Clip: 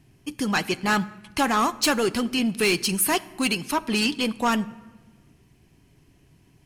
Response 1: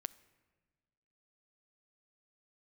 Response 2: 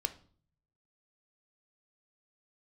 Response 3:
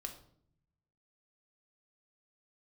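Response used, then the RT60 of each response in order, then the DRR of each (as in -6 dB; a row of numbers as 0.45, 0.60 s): 1; 1.4, 0.45, 0.65 s; 15.0, 9.5, 4.0 dB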